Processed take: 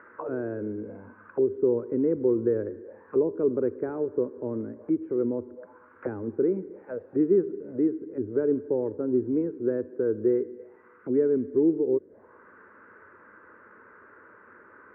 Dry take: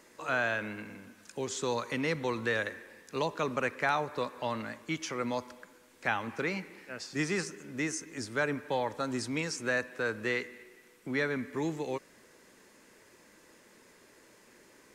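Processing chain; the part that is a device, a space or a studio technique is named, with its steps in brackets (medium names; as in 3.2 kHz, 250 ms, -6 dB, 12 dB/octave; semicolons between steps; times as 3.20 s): envelope filter bass rig (touch-sensitive low-pass 370–1500 Hz down, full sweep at -35.5 dBFS; cabinet simulation 63–2300 Hz, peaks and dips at 95 Hz +8 dB, 150 Hz -8 dB, 450 Hz +4 dB, 740 Hz -6 dB, 1.5 kHz +7 dB); trim +2.5 dB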